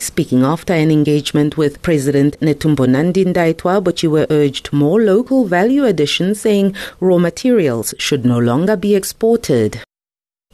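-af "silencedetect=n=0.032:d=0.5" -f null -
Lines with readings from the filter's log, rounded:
silence_start: 9.84
silence_end: 10.53 | silence_duration: 0.69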